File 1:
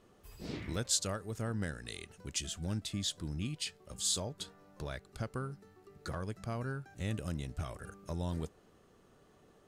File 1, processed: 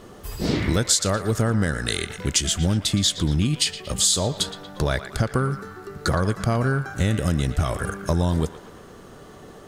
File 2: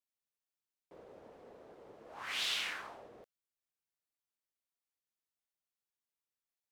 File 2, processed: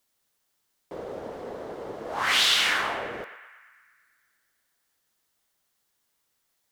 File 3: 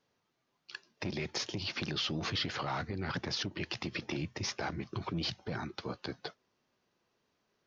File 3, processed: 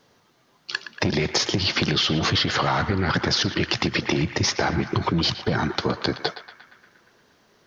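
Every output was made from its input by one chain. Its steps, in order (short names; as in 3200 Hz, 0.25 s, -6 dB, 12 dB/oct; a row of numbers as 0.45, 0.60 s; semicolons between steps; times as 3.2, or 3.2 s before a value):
bell 2500 Hz -4.5 dB 0.26 oct; compressor 5:1, threshold -37 dBFS; narrowing echo 0.117 s, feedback 71%, band-pass 1700 Hz, level -10 dB; match loudness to -23 LUFS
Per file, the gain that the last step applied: +20.0, +18.5, +18.5 dB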